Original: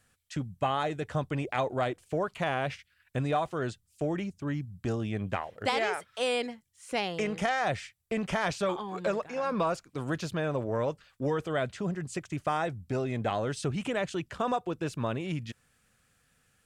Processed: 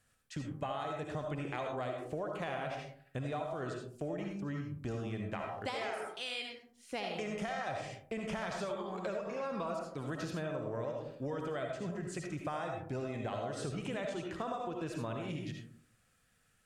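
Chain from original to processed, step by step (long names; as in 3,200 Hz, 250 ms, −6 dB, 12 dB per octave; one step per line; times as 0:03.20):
0:06.07–0:06.92: octave-band graphic EQ 125/250/500/1,000/4,000/8,000 Hz −3/−8/−11/−9/+4/−7 dB
convolution reverb RT60 0.55 s, pre-delay 35 ms, DRR 1.5 dB
downward compressor, threshold −29 dBFS, peak gain reduction 8.5 dB
level −5.5 dB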